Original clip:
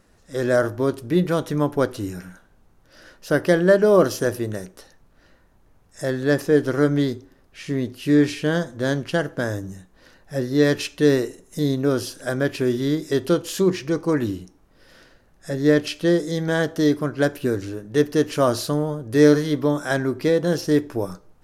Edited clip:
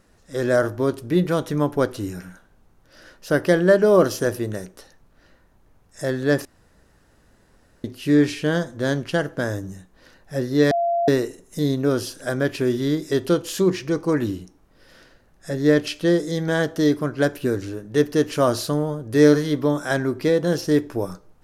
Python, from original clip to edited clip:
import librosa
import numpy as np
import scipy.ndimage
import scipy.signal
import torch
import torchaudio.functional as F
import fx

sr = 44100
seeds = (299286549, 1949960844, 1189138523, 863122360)

y = fx.edit(x, sr, fx.room_tone_fill(start_s=6.45, length_s=1.39),
    fx.bleep(start_s=10.71, length_s=0.37, hz=686.0, db=-18.0), tone=tone)